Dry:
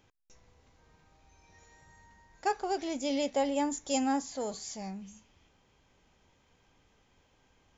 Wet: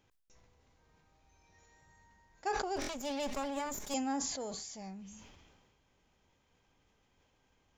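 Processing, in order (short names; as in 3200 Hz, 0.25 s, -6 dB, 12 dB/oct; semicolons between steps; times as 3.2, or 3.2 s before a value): 2.76–3.94 minimum comb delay 4.8 ms; stuck buffer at 2.8, samples 1024, times 3; sustainer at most 33 dB/s; gain -6 dB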